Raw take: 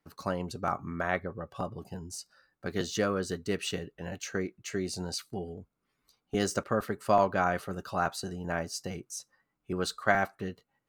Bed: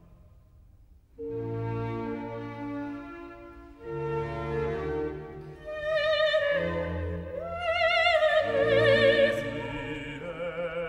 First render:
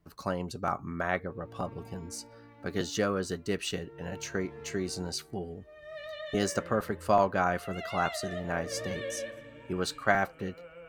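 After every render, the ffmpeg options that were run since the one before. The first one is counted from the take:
ffmpeg -i in.wav -i bed.wav -filter_complex "[1:a]volume=-16dB[link_01];[0:a][link_01]amix=inputs=2:normalize=0" out.wav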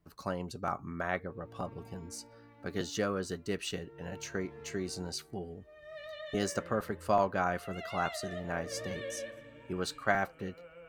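ffmpeg -i in.wav -af "volume=-3.5dB" out.wav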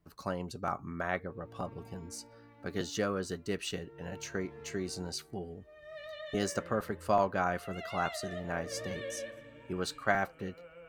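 ffmpeg -i in.wav -af anull out.wav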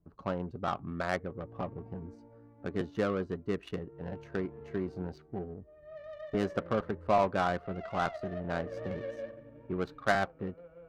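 ffmpeg -i in.wav -filter_complex "[0:a]asplit=2[link_01][link_02];[link_02]asoftclip=type=tanh:threshold=-25.5dB,volume=-9dB[link_03];[link_01][link_03]amix=inputs=2:normalize=0,adynamicsmooth=sensitivity=2.5:basefreq=710" out.wav

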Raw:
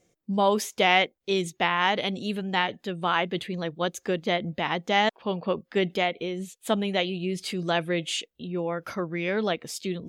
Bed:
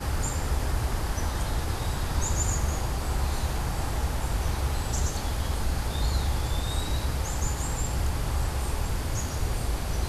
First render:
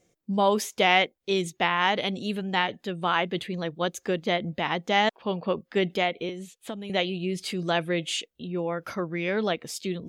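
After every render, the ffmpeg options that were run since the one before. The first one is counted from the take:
ffmpeg -i in.wav -filter_complex "[0:a]asettb=1/sr,asplit=3[link_01][link_02][link_03];[link_01]atrim=end=6.294[link_04];[link_02]atrim=start=6.29:end=6.9,asetpts=PTS-STARTPTS,afade=type=in:duration=0.004:curve=qsin,afade=type=out:start_time=0.606:duration=0.004:curve=qsin,acrossover=split=480|4800[link_05][link_06][link_07];[link_05]acompressor=threshold=-37dB:ratio=4[link_08];[link_06]acompressor=threshold=-41dB:ratio=4[link_09];[link_07]acompressor=threshold=-52dB:ratio=4[link_10];[link_08][link_09][link_10]amix=inputs=3:normalize=0[link_11];[link_03]atrim=start=6.896[link_12];[link_04][link_11]acrossfade=duration=0.004:curve1=hsin:curve2=qsin[link_13];[link_13][link_12]acrossfade=duration=0.004:curve1=qsin:curve2=hsin" out.wav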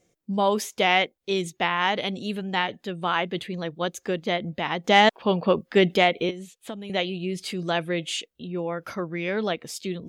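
ffmpeg -i in.wav -filter_complex "[0:a]asettb=1/sr,asplit=3[link_01][link_02][link_03];[link_01]atrim=end=4.844[link_04];[link_02]atrim=start=4.84:end=6.31,asetpts=PTS-STARTPTS,afade=type=in:duration=0.004:curve=qsin,afade=type=out:start_time=1.466:duration=0.004:curve=qsin,acontrast=62[link_05];[link_03]atrim=start=6.306[link_06];[link_04][link_05]acrossfade=duration=0.004:curve1=hsin:curve2=qsin[link_07];[link_07][link_06]acrossfade=duration=0.004:curve1=qsin:curve2=hsin" out.wav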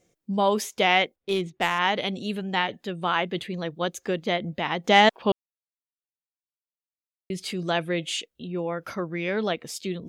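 ffmpeg -i in.wav -filter_complex "[0:a]asettb=1/sr,asplit=3[link_01][link_02][link_03];[link_01]atrim=end=1.164[link_04];[link_02]atrim=start=1.16:end=1.79,asetpts=PTS-STARTPTS,afade=type=in:duration=0.004:curve=qsin,afade=type=out:start_time=0.626:duration=0.004:curve=qsin,adynamicsmooth=sensitivity=3:basefreq=2400[link_05];[link_03]atrim=start=1.786[link_06];[link_04][link_05]acrossfade=duration=0.004:curve1=hsin:curve2=qsin[link_07];[link_07][link_06]acrossfade=duration=0.004:curve1=qsin:curve2=hsin,asplit=3[link_08][link_09][link_10];[link_08]atrim=end=5.32,asetpts=PTS-STARTPTS,afade=type=out:start_time=5.316:duration=0.004:curve=hsin[link_11];[link_09]atrim=start=5.32:end=7.3,asetpts=PTS-STARTPTS,volume=0[link_12];[link_10]atrim=start=7.3,asetpts=PTS-STARTPTS,afade=type=in:duration=0.004:curve=hsin[link_13];[link_11][link_12][link_13]concat=n=3:v=0:a=1" out.wav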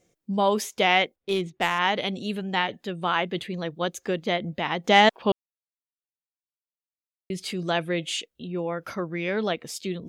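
ffmpeg -i in.wav -af anull out.wav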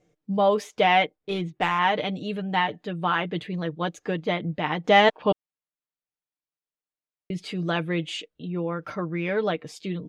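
ffmpeg -i in.wav -af "aemphasis=mode=reproduction:type=75fm,aecho=1:1:6.6:0.56" out.wav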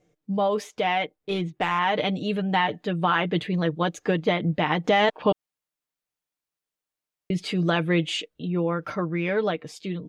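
ffmpeg -i in.wav -af "alimiter=limit=-16dB:level=0:latency=1:release=93,dynaudnorm=framelen=780:gausssize=5:maxgain=5dB" out.wav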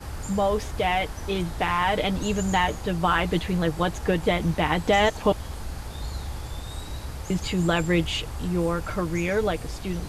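ffmpeg -i in.wav -i bed.wav -filter_complex "[1:a]volume=-6.5dB[link_01];[0:a][link_01]amix=inputs=2:normalize=0" out.wav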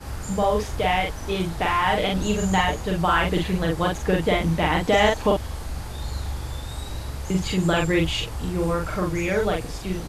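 ffmpeg -i in.wav -filter_complex "[0:a]asplit=2[link_01][link_02];[link_02]adelay=43,volume=-2dB[link_03];[link_01][link_03]amix=inputs=2:normalize=0" out.wav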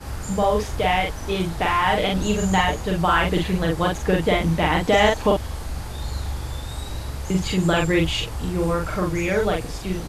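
ffmpeg -i in.wav -af "volume=1.5dB" out.wav

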